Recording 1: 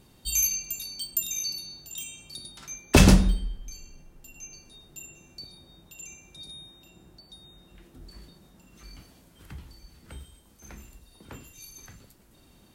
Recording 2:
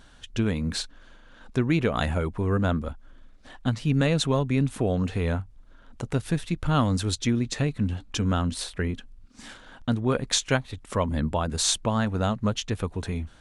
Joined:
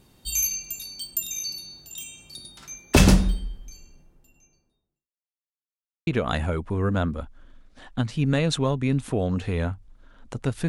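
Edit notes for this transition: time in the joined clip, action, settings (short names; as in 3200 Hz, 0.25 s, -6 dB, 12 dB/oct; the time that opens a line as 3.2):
recording 1
3.33–5.12 studio fade out
5.12–6.07 mute
6.07 switch to recording 2 from 1.75 s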